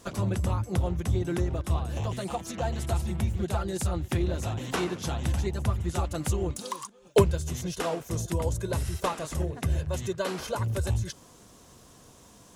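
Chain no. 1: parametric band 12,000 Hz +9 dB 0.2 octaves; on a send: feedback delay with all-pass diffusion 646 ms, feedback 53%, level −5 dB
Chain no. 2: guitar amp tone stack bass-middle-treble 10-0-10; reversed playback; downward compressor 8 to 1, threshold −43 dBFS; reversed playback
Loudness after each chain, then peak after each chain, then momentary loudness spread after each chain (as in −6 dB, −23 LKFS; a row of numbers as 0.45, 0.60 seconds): −28.5, −47.5 LKFS; −8.5, −28.5 dBFS; 6, 4 LU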